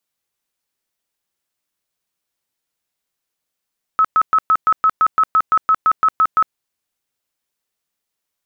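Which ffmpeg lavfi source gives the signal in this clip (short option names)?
-f lavfi -i "aevalsrc='0.335*sin(2*PI*1290*mod(t,0.17))*lt(mod(t,0.17),72/1290)':d=2.55:s=44100"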